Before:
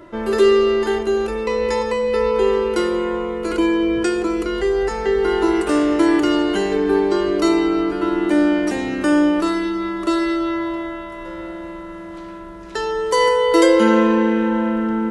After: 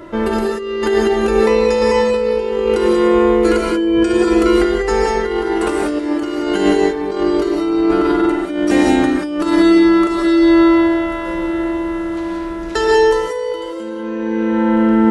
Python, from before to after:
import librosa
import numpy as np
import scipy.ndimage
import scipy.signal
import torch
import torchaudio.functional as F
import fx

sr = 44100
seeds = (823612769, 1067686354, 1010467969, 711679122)

y = fx.over_compress(x, sr, threshold_db=-21.0, ratio=-0.5)
y = fx.rev_gated(y, sr, seeds[0], gate_ms=210, shape='rising', drr_db=-1.0)
y = y * 10.0 ** (2.5 / 20.0)